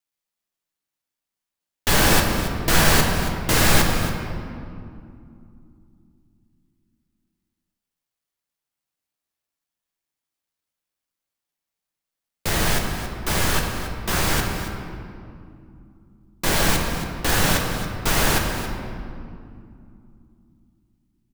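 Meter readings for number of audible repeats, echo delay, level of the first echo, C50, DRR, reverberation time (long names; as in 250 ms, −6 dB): 1, 276 ms, −12.5 dB, 3.5 dB, 1.0 dB, 2.5 s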